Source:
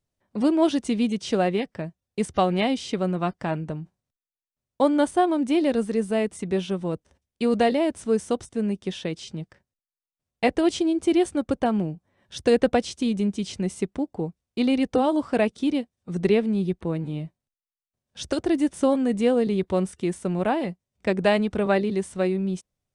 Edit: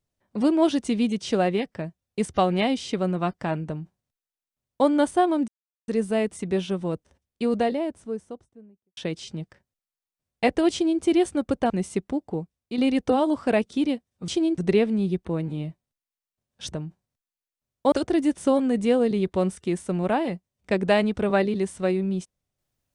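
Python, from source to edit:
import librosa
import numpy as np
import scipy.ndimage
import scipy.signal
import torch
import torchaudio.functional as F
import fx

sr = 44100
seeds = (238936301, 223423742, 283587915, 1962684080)

y = fx.studio_fade_out(x, sr, start_s=6.93, length_s=2.04)
y = fx.edit(y, sr, fx.duplicate(start_s=3.67, length_s=1.2, to_s=18.28),
    fx.silence(start_s=5.48, length_s=0.4),
    fx.duplicate(start_s=10.72, length_s=0.3, to_s=16.14),
    fx.cut(start_s=11.7, length_s=1.86),
    fx.fade_out_to(start_s=14.16, length_s=0.48, floor_db=-7.0), tone=tone)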